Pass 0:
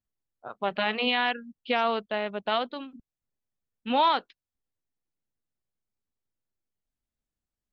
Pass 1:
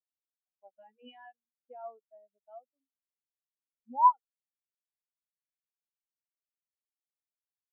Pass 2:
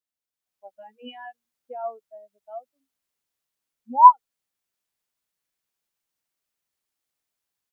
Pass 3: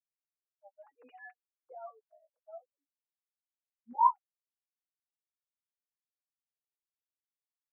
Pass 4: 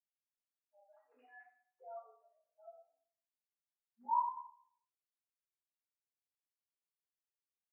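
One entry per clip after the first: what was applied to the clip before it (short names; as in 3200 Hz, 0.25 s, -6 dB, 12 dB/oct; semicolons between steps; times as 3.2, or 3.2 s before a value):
spectral expander 4:1
AGC gain up to 10 dB; gain +2 dB
sine-wave speech; flange 0.52 Hz, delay 5.1 ms, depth 1.8 ms, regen -21%; gain -9 dB
reverb RT60 0.60 s, pre-delay 97 ms; gain +1 dB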